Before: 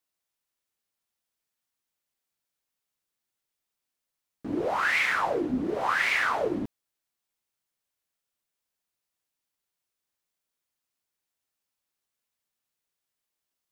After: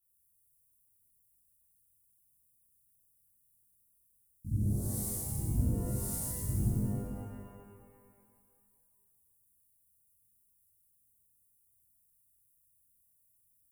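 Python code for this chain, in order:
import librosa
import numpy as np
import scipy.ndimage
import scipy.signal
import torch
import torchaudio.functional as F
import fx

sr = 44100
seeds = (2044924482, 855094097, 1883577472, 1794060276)

y = scipy.signal.sosfilt(scipy.signal.ellip(3, 1.0, 60, [120.0, 9800.0], 'bandstop', fs=sr, output='sos'), x)
y = fx.rev_shimmer(y, sr, seeds[0], rt60_s=1.9, semitones=12, shimmer_db=-8, drr_db=-10.0)
y = y * librosa.db_to_amplitude(6.5)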